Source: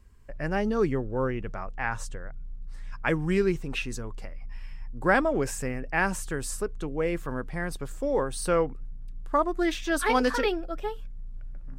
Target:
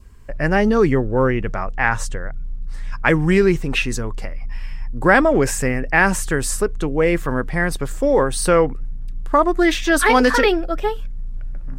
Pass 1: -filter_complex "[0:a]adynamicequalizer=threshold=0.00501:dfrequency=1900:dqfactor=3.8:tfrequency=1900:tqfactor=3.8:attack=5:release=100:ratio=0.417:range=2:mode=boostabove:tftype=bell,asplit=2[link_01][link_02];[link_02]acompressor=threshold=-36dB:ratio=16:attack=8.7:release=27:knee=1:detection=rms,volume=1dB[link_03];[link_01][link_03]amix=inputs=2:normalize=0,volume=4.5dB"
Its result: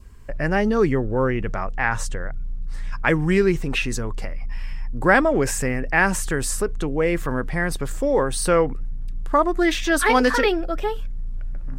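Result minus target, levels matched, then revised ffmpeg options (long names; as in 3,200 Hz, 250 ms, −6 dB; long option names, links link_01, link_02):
downward compressor: peak gain reduction +11.5 dB
-filter_complex "[0:a]adynamicequalizer=threshold=0.00501:dfrequency=1900:dqfactor=3.8:tfrequency=1900:tqfactor=3.8:attack=5:release=100:ratio=0.417:range=2:mode=boostabove:tftype=bell,asplit=2[link_01][link_02];[link_02]acompressor=threshold=-24dB:ratio=16:attack=8.7:release=27:knee=1:detection=rms,volume=1dB[link_03];[link_01][link_03]amix=inputs=2:normalize=0,volume=4.5dB"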